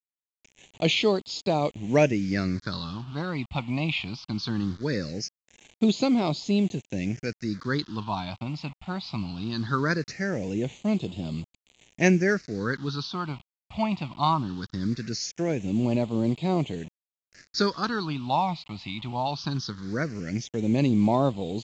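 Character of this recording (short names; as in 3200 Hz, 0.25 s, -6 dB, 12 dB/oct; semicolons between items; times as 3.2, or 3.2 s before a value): a quantiser's noise floor 8-bit, dither none; phasing stages 6, 0.2 Hz, lowest notch 420–1600 Hz; µ-law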